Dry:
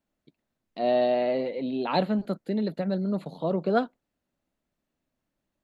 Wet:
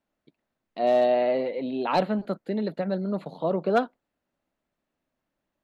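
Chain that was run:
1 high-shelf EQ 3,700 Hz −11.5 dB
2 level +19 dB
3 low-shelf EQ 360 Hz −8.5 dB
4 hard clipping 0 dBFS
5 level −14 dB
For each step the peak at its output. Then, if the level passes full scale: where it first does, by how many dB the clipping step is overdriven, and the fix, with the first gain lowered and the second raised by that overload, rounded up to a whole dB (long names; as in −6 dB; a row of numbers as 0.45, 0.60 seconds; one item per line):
−12.5, +6.5, +4.0, 0.0, −14.0 dBFS
step 2, 4.0 dB
step 2 +15 dB, step 5 −10 dB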